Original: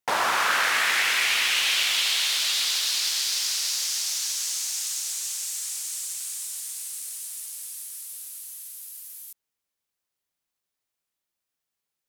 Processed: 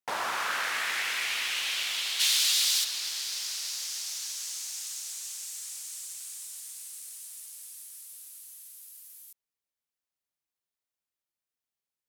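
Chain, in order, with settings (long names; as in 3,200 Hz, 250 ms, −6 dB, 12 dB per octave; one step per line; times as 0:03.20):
0:02.19–0:02.83: high-shelf EQ 2,200 Hz → 3,400 Hz +11 dB
level −8 dB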